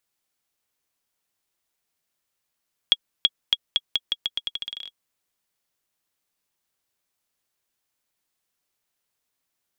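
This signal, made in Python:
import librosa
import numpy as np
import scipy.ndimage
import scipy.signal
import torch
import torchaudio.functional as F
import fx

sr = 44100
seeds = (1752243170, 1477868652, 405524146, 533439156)

y = fx.bouncing_ball(sr, first_gap_s=0.33, ratio=0.84, hz=3320.0, decay_ms=42.0, level_db=-3.5)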